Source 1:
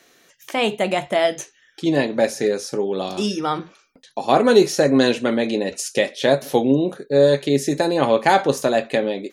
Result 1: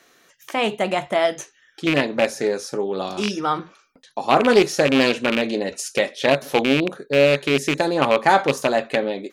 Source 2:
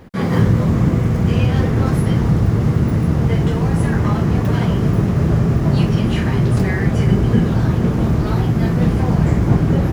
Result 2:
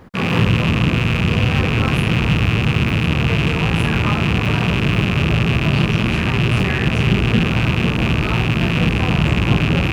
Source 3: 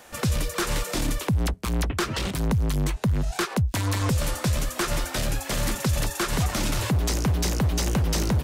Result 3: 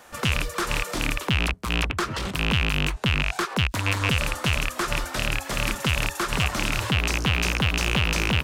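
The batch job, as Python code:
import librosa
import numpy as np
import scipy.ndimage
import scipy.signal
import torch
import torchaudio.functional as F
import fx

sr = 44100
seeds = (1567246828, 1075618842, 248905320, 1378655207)

y = fx.rattle_buzz(x, sr, strikes_db=-22.0, level_db=-9.0)
y = fx.peak_eq(y, sr, hz=1200.0, db=5.0, octaves=0.95)
y = fx.doppler_dist(y, sr, depth_ms=0.24)
y = F.gain(torch.from_numpy(y), -2.0).numpy()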